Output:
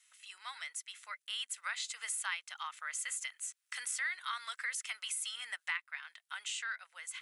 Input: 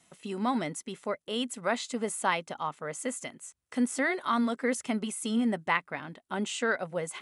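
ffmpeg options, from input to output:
-af "dynaudnorm=f=250:g=11:m=2.66,highpass=f=1500:w=0.5412,highpass=f=1500:w=1.3066,acompressor=threshold=0.0178:ratio=3,volume=0.794"

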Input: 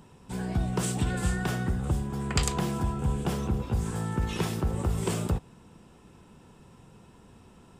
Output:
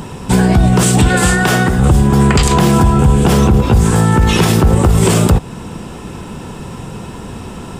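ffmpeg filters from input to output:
-filter_complex "[0:a]asplit=2[s0][s1];[s1]acompressor=threshold=0.0178:ratio=6,volume=0.841[s2];[s0][s2]amix=inputs=2:normalize=0,asettb=1/sr,asplit=3[s3][s4][s5];[s3]atrim=end=1.084[s6];[s4]atrim=start=1.08:end=1.79,asetpts=PTS-STARTPTS,afade=t=in:d=0.004:c=qsin,afade=t=out:st=0.706:d=0.004:c=qsin,lowshelf=f=180:g=-11[s7];[s5]atrim=start=1.786[s8];[s6][s7]acrossfade=d=0.004:c1=hsin:c2=qsin[s9];[s9][s8]acrossfade=d=0.004:c1=qsin:c2=hsin,alimiter=level_in=11.9:limit=0.891:release=50:level=0:latency=1,volume=0.891"

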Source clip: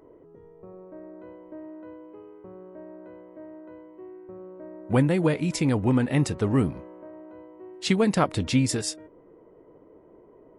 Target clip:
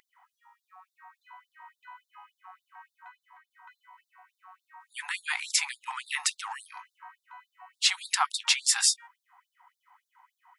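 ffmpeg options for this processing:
-filter_complex "[0:a]asettb=1/sr,asplit=3[s0][s1][s2];[s0]atrim=end=3.084[s3];[s1]atrim=start=3.08:end=3.51,asetpts=PTS-STARTPTS,afade=t=in:d=0.004:c=qsin,afade=t=out:st=0.426:d=0.004:c=qsin,acompressor=threshold=0.00631:ratio=4[s4];[s2]atrim=start=3.506[s5];[s3][s4]acrossfade=d=0.004:c1=hsin:c2=qsin[s6];[s6][s5]acrossfade=d=0.004:c1=qsin:c2=hsin,alimiter=level_in=8.91:limit=0.891:release=50:level=0:latency=1,afftfilt=real='re*gte(b*sr/1024,690*pow(3600/690,0.5+0.5*sin(2*PI*3.5*pts/sr)))':imag='im*gte(b*sr/1024,690*pow(3600/690,0.5+0.5*sin(2*PI*3.5*pts/sr)))':win_size=1024:overlap=0.75,volume=0.355"

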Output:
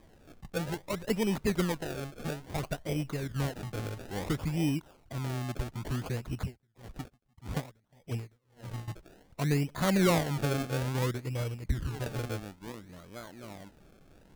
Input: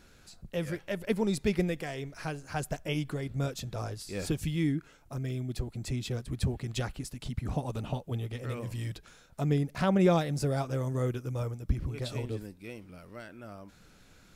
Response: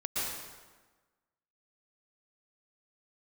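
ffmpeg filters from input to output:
-filter_complex "[0:a]acrusher=samples=31:mix=1:aa=0.000001:lfo=1:lforange=31:lforate=0.59,asoftclip=type=tanh:threshold=0.158,asettb=1/sr,asplit=3[s0][s1][s2];[s0]atrim=end=6.384[s3];[s1]atrim=start=6.38:end=8.88,asetpts=PTS-STARTPTS,afade=t=in:d=0.004:c=qsin,afade=t=out:st=2.496:d=0.004:c=qsin,aeval=exprs='val(0)*pow(10,-38*(0.5-0.5*cos(2*PI*1.7*n/s))/20)':c=same[s4];[s2]atrim=start=8.876[s5];[s3][s4]acrossfade=d=0.004:c1=hsin:c2=qsin[s6];[s6][s5]acrossfade=d=0.004:c1=qsin:c2=hsin"

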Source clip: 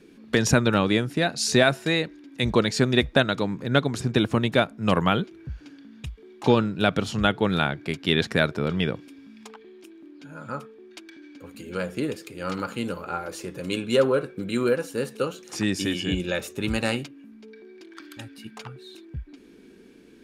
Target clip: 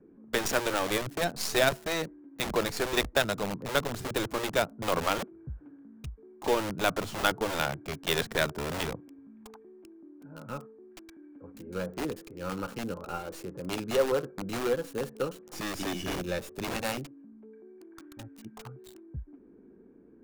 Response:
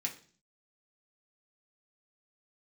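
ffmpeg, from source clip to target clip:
-filter_complex "[0:a]asettb=1/sr,asplit=3[s0][s1][s2];[s0]atrim=end=6.794[s3];[s1]atrim=start=6.79:end=7.38,asetpts=PTS-STARTPTS,afade=t=in:d=0.004:c=qsin,afade=t=out:st=0.586:d=0.004:c=qsin,equalizer=f=1100:w=1.7:g=4[s4];[s2]atrim=start=7.376[s5];[s3][s4]acrossfade=d=0.004:c1=hsin:c2=qsin[s6];[s6][s5]acrossfade=d=0.004:c1=qsin:c2=hsin,acrossover=split=320|1300[s7][s8][s9];[s7]aeval=exprs='(mod(18.8*val(0)+1,2)-1)/18.8':c=same[s10];[s9]acrusher=bits=4:dc=4:mix=0:aa=0.000001[s11];[s10][s8][s11]amix=inputs=3:normalize=0,volume=0.596"

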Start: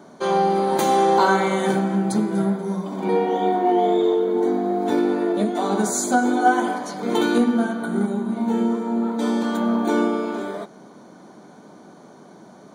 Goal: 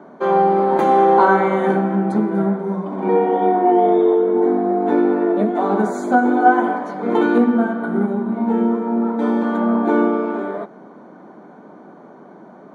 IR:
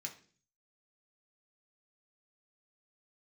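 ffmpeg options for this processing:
-filter_complex "[0:a]acrossover=split=160 2200:gain=0.224 1 0.0708[s0][s1][s2];[s0][s1][s2]amix=inputs=3:normalize=0,volume=1.68"

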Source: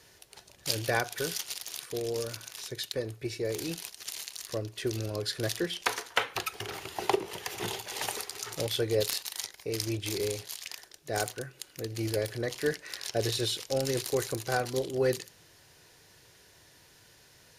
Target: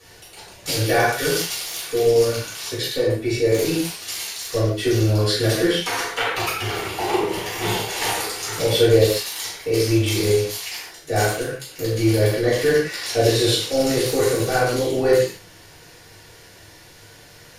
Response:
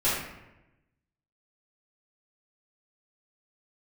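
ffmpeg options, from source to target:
-filter_complex "[0:a]alimiter=limit=0.112:level=0:latency=1:release=79[s0];[1:a]atrim=start_sample=2205,atrim=end_sample=6174,asetrate=37044,aresample=44100[s1];[s0][s1]afir=irnorm=-1:irlink=0"

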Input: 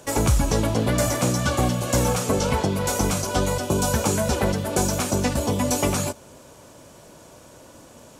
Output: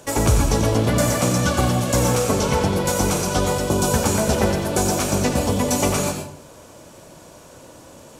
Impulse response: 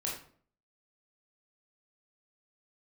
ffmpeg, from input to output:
-filter_complex "[0:a]asplit=2[s0][s1];[1:a]atrim=start_sample=2205,adelay=91[s2];[s1][s2]afir=irnorm=-1:irlink=0,volume=0.473[s3];[s0][s3]amix=inputs=2:normalize=0,volume=1.19"

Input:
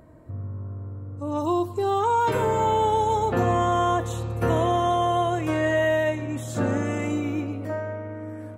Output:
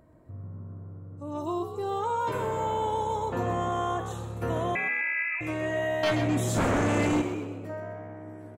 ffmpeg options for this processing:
-filter_complex "[0:a]asettb=1/sr,asplit=3[s0][s1][s2];[s0]atrim=end=4.754[s3];[s1]atrim=start=4.75:end=5.41,asetpts=PTS-STARTPTS,afade=t=in:d=0.004:c=qsin,afade=t=out:st=0.656:d=0.004:c=qsin,lowpass=f=2300:t=q:w=0.5098,lowpass=f=2300:t=q:w=0.6013,lowpass=f=2300:t=q:w=0.9,lowpass=f=2300:t=q:w=2.563,afreqshift=-2700[s4];[s2]atrim=start=5.406[s5];[s3][s4]acrossfade=d=0.004:c1=hsin:c2=qsin[s6];[s6][s5]acrossfade=d=0.004:c1=qsin:c2=hsin,asettb=1/sr,asplit=3[s7][s8][s9];[s7]atrim=end=6.034[s10];[s8]atrim=start=6.03:end=7.22,asetpts=PTS-STARTPTS,afade=t=in:d=0.004:c=qsin,afade=t=out:st=1.186:d=0.004:c=qsin,aeval=exprs='0.2*sin(PI/2*2.82*val(0)/0.2)':c=same[s11];[s9]atrim=start=7.216[s12];[s10][s11]acrossfade=d=0.004:c1=hsin:c2=qsin[s13];[s13][s12]acrossfade=d=0.004:c1=qsin:c2=hsin,asplit=5[s14][s15][s16][s17][s18];[s15]adelay=128,afreqshift=67,volume=0.316[s19];[s16]adelay=256,afreqshift=134,volume=0.13[s20];[s17]adelay=384,afreqshift=201,volume=0.0531[s21];[s18]adelay=512,afreqshift=268,volume=0.0219[s22];[s14][s19][s20][s21][s22]amix=inputs=5:normalize=0,volume=0.422"

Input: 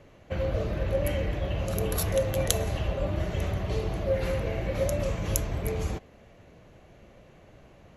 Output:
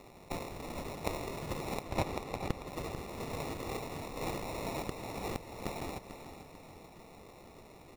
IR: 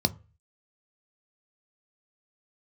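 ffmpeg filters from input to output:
-filter_complex "[0:a]acompressor=threshold=0.0282:ratio=5,highpass=f=1400:w=0.5412,highpass=f=1400:w=1.3066,alimiter=level_in=1.33:limit=0.0631:level=0:latency=1:release=470,volume=0.75,acrusher=samples=28:mix=1:aa=0.000001,asettb=1/sr,asplit=3[s0][s1][s2];[s0]atrim=end=1.824[s3];[s1]atrim=start=1.82:end=2.68,asetpts=PTS-STARTPTS,afade=t=in:d=0.004:c=qsin,afade=t=out:st=0.856:d=0.004:c=qsin,highshelf=f=6800:g=-9[s4];[s2]atrim=start=2.676[s5];[s3][s4]acrossfade=d=0.004:c1=hsin:c2=qsin[s6];[s6][s5]acrossfade=d=0.004:c1=qsin:c2=hsin,aecho=1:1:443|886|1329|1772|2215:0.299|0.137|0.0632|0.0291|0.0134,volume=3.76"

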